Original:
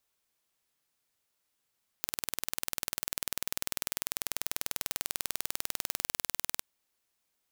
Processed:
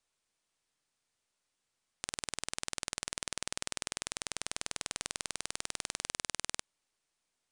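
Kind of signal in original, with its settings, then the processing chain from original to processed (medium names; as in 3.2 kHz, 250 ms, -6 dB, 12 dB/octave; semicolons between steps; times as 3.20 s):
pulse train 20.2 per s, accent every 0, -4 dBFS 4.57 s
partial rectifier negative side -3 dB; steep low-pass 10 kHz 72 dB/octave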